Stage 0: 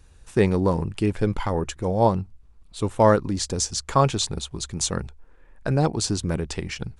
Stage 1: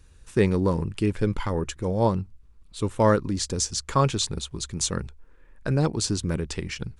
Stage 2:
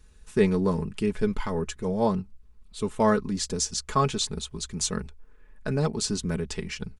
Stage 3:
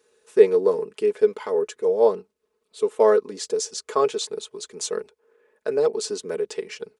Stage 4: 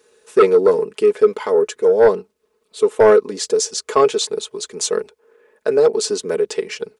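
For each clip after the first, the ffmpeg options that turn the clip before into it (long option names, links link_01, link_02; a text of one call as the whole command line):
ffmpeg -i in.wav -af "equalizer=frequency=740:width=2.7:gain=-7.5,volume=-1dB" out.wav
ffmpeg -i in.wav -af "aecho=1:1:4.7:0.66,volume=-3dB" out.wav
ffmpeg -i in.wav -af "highpass=frequency=450:width_type=q:width=4.9,volume=-2dB" out.wav
ffmpeg -i in.wav -af "aeval=exprs='0.794*sin(PI/2*2.24*val(0)/0.794)':channel_layout=same,volume=-3dB" out.wav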